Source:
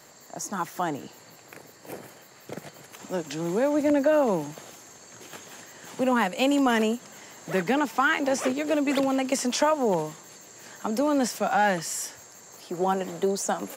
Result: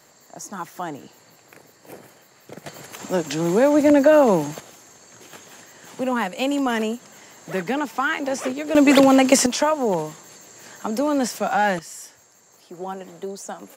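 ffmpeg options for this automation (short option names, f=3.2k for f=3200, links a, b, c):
-af "asetnsamples=n=441:p=0,asendcmd='2.66 volume volume 7.5dB;4.6 volume volume 0dB;8.75 volume volume 11dB;9.46 volume volume 2.5dB;11.79 volume volume -6.5dB',volume=-2dB"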